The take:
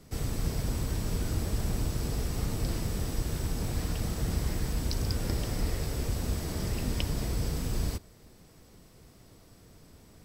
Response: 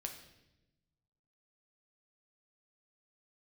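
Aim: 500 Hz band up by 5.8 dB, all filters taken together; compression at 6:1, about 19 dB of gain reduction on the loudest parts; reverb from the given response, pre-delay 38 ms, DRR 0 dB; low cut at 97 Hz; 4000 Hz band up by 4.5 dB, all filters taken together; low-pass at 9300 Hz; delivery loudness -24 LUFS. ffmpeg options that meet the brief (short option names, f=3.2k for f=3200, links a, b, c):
-filter_complex "[0:a]highpass=97,lowpass=9.3k,equalizer=f=500:t=o:g=7,equalizer=f=4k:t=o:g=6,acompressor=threshold=-49dB:ratio=6,asplit=2[a][b];[1:a]atrim=start_sample=2205,adelay=38[c];[b][c]afir=irnorm=-1:irlink=0,volume=2dB[d];[a][d]amix=inputs=2:normalize=0,volume=24dB"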